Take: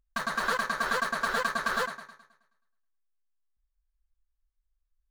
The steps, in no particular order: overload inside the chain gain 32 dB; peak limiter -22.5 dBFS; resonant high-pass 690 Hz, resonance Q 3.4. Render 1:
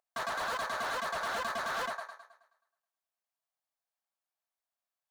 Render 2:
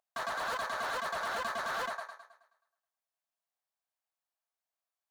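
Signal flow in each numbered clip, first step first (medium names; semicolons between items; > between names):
peak limiter > resonant high-pass > overload inside the chain; resonant high-pass > peak limiter > overload inside the chain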